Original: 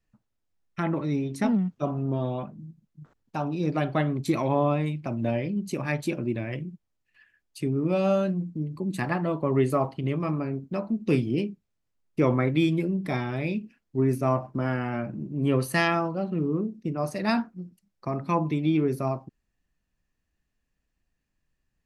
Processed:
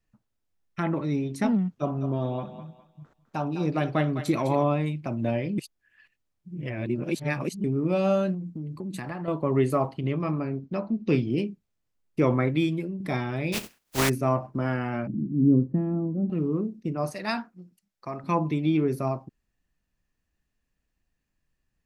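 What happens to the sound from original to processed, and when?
1.7–4.64 thinning echo 0.205 s, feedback 37%, high-pass 600 Hz, level -9 dB
5.58–7.64 reverse
8.34–9.28 compressor, threshold -30 dBFS
10.03–11.31 LPF 6000 Hz 24 dB/oct
12.45–13 fade out linear, to -8 dB
13.52–14.08 spectral contrast lowered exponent 0.3
15.07–16.3 synth low-pass 260 Hz, resonance Q 2.5
17.12–18.24 low shelf 500 Hz -9.5 dB

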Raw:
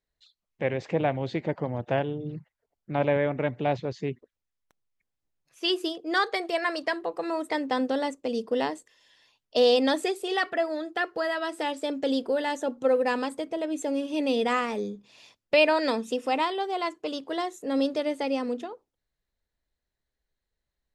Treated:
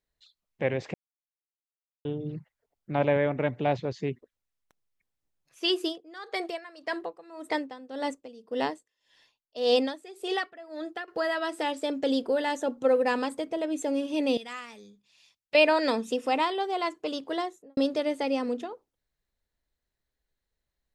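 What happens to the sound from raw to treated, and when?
0.94–2.05 mute
5.87–11.08 dB-linear tremolo 1.8 Hz, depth 20 dB
14.37–15.55 passive tone stack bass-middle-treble 5-5-5
17.34–17.77 studio fade out

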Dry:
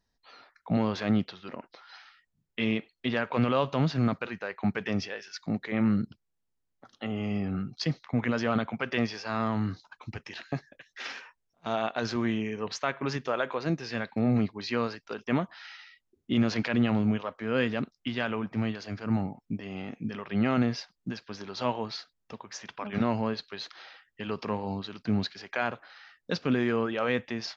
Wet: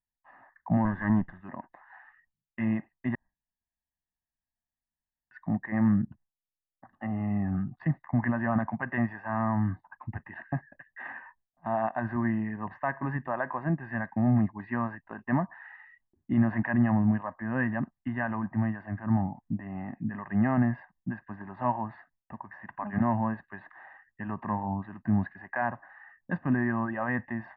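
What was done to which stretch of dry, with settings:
0.85–1.41 minimum comb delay 0.59 ms
3.15–5.31 room tone
whole clip: Chebyshev low-pass 1800 Hz, order 4; gate with hold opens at -60 dBFS; comb 1.1 ms, depth 97%; gain -1 dB

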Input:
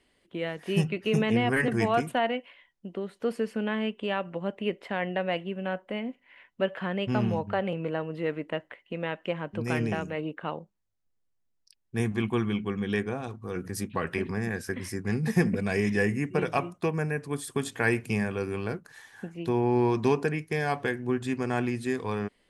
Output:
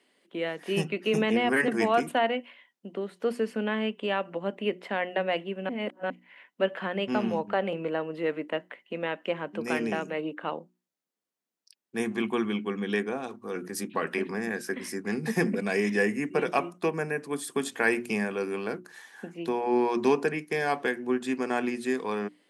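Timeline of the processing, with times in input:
5.69–6.1 reverse
whole clip: HPF 200 Hz 24 dB/oct; notches 60/120/180/240/300/360 Hz; gain +1.5 dB

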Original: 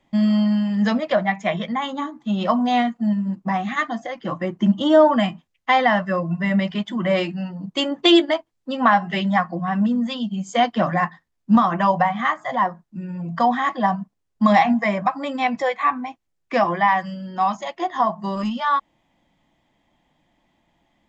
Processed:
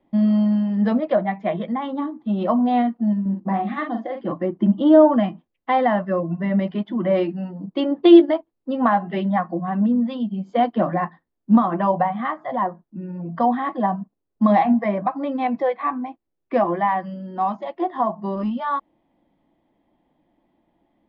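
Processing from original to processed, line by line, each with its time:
3.21–4.32 doubler 46 ms -6 dB
whole clip: EQ curve 140 Hz 0 dB, 330 Hz +10 dB, 2100 Hz -5 dB, 4400 Hz -8 dB, 7000 Hz -29 dB; gain -4.5 dB

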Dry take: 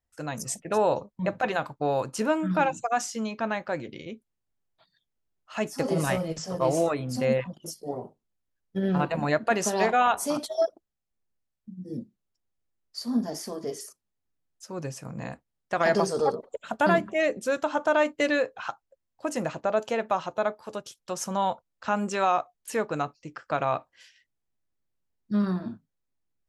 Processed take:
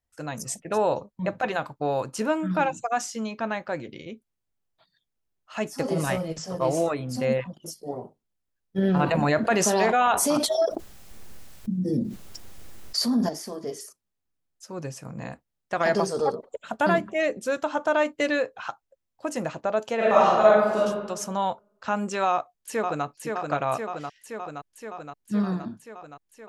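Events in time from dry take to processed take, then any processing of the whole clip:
8.78–13.29 fast leveller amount 70%
19.96–20.85 reverb throw, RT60 1.2 s, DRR -9.5 dB
22.31–23.05 echo throw 0.52 s, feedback 75%, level -4 dB

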